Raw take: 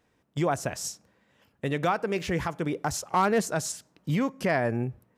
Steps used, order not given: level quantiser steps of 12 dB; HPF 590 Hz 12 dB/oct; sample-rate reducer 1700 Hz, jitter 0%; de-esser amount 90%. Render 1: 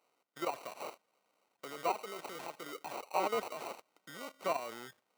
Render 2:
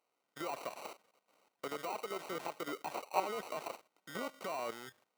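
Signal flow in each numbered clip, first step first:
level quantiser > sample-rate reducer > HPF > de-esser; sample-rate reducer > HPF > level quantiser > de-esser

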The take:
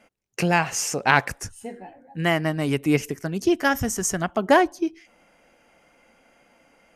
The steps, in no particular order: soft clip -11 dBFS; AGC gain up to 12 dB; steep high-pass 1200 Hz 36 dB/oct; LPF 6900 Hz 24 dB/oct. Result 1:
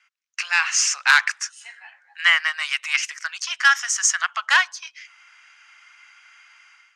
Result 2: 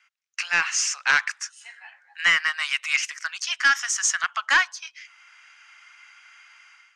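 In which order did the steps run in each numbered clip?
LPF > soft clip > steep high-pass > AGC; steep high-pass > AGC > soft clip > LPF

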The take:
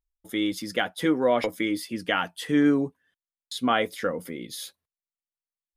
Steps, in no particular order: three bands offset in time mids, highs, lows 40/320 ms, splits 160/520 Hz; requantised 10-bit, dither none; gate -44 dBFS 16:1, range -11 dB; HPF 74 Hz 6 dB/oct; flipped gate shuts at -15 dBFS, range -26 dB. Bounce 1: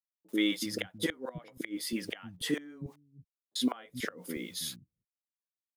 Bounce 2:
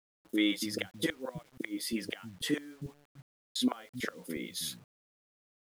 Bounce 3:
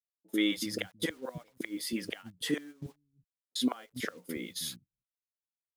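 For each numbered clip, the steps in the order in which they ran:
gate > requantised > HPF > flipped gate > three bands offset in time; HPF > flipped gate > gate > three bands offset in time > requantised; flipped gate > HPF > requantised > three bands offset in time > gate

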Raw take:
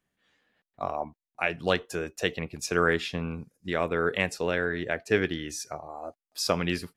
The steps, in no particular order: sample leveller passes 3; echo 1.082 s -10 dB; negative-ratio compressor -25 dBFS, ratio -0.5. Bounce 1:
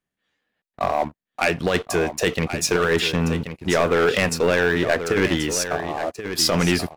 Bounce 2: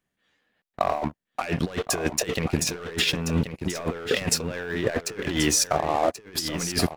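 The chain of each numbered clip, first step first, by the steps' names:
negative-ratio compressor > sample leveller > echo; sample leveller > negative-ratio compressor > echo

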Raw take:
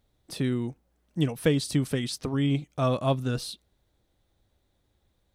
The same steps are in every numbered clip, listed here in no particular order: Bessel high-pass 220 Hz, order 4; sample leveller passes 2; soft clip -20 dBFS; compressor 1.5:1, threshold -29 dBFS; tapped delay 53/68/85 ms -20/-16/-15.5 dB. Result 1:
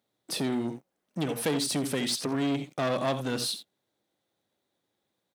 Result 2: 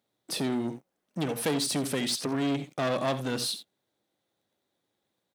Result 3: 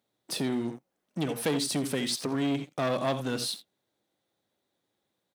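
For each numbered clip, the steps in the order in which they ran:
tapped delay > compressor > soft clip > sample leveller > Bessel high-pass; soft clip > compressor > tapped delay > sample leveller > Bessel high-pass; tapped delay > sample leveller > compressor > soft clip > Bessel high-pass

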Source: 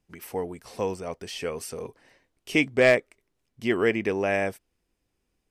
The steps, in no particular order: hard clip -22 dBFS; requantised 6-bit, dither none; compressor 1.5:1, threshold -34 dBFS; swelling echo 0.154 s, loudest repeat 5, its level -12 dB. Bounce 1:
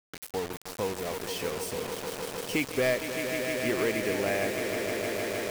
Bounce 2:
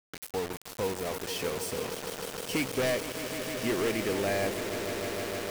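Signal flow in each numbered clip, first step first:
swelling echo > compressor > hard clip > requantised; hard clip > compressor > swelling echo > requantised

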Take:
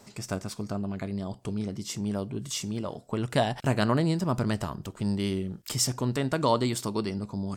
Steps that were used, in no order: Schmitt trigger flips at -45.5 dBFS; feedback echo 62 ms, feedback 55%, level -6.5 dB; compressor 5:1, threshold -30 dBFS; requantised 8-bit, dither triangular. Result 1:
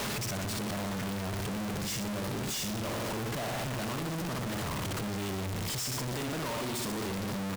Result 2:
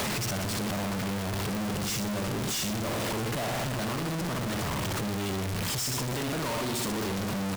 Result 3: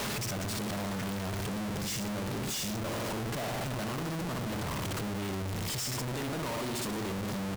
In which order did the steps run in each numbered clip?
feedback echo > compressor > requantised > Schmitt trigger; requantised > feedback echo > Schmitt trigger > compressor; feedback echo > requantised > compressor > Schmitt trigger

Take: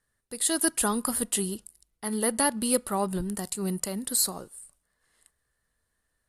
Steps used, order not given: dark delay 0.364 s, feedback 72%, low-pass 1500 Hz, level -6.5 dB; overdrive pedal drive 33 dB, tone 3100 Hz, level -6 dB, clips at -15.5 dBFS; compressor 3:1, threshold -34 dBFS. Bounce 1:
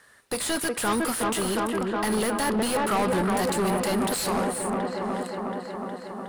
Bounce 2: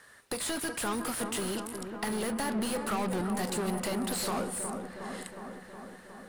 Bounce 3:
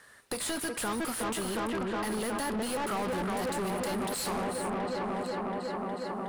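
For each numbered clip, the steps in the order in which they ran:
compressor > dark delay > overdrive pedal; overdrive pedal > compressor > dark delay; dark delay > overdrive pedal > compressor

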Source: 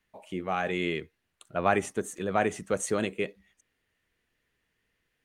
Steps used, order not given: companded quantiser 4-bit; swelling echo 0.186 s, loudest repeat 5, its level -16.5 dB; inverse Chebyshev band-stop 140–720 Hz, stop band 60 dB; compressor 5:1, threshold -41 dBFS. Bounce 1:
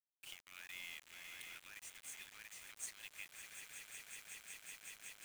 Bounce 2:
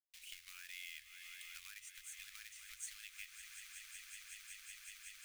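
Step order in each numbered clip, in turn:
swelling echo > compressor > inverse Chebyshev band-stop > companded quantiser; companded quantiser > swelling echo > compressor > inverse Chebyshev band-stop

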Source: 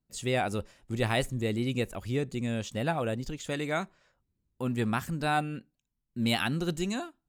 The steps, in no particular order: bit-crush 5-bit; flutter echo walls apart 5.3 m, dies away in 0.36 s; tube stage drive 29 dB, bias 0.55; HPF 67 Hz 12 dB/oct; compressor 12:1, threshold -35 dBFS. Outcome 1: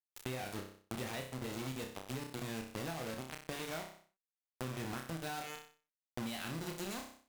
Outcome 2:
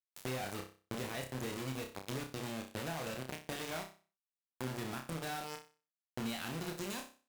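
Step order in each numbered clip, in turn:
HPF > bit-crush > flutter echo > compressor > tube stage; bit-crush > HPF > compressor > flutter echo > tube stage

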